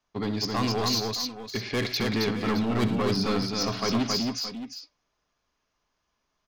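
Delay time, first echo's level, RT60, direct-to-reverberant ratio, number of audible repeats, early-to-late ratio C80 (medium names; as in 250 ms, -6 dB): 66 ms, -13.5 dB, no reverb, no reverb, 4, no reverb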